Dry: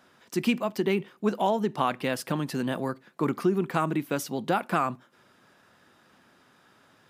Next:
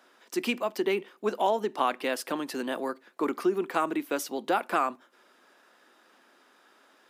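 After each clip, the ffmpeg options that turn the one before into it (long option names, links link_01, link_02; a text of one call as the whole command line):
ffmpeg -i in.wav -af "highpass=frequency=280:width=0.5412,highpass=frequency=280:width=1.3066" out.wav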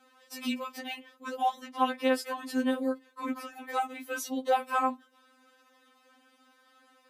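ffmpeg -i in.wav -af "afftfilt=real='re*3.46*eq(mod(b,12),0)':imag='im*3.46*eq(mod(b,12),0)':win_size=2048:overlap=0.75" out.wav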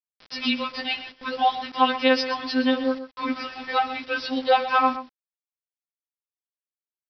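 ffmpeg -i in.wav -af "crystalizer=i=4:c=0,aresample=11025,acrusher=bits=7:mix=0:aa=0.000001,aresample=44100,aecho=1:1:126:0.224,volume=6dB" out.wav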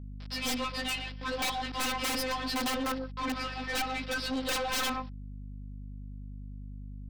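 ffmpeg -i in.wav -af "aeval=exprs='(mod(7.5*val(0)+1,2)-1)/7.5':channel_layout=same,aeval=exprs='val(0)+0.01*(sin(2*PI*50*n/s)+sin(2*PI*2*50*n/s)/2+sin(2*PI*3*50*n/s)/3+sin(2*PI*4*50*n/s)/4+sin(2*PI*5*50*n/s)/5)':channel_layout=same,aeval=exprs='(tanh(28.2*val(0)+0.25)-tanh(0.25))/28.2':channel_layout=same" out.wav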